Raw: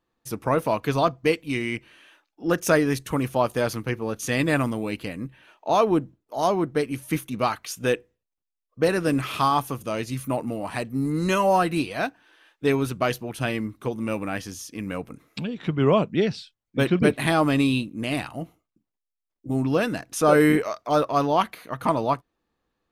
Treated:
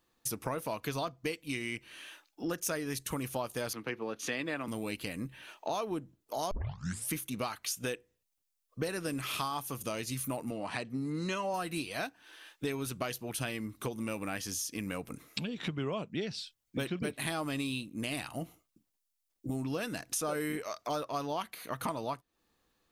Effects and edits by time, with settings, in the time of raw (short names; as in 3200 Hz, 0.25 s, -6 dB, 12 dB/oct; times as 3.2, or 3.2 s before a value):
3.73–4.68 three-band isolator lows -15 dB, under 190 Hz, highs -19 dB, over 4100 Hz
6.51 tape start 0.59 s
10.51–11.54 BPF 100–5200 Hz
whole clip: high shelf 3200 Hz +11.5 dB; compressor 5:1, threshold -34 dBFS